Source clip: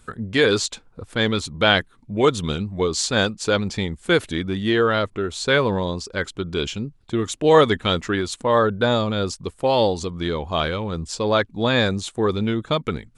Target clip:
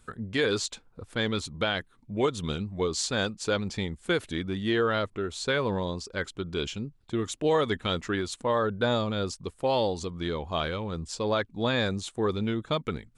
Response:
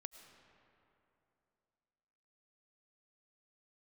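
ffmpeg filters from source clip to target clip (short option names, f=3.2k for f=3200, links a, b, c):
-af "alimiter=limit=-9dB:level=0:latency=1:release=160,volume=-6.5dB"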